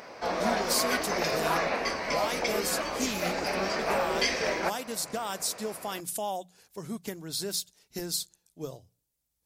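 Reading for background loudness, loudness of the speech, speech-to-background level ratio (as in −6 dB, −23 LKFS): −29.5 LKFS, −34.0 LKFS, −4.5 dB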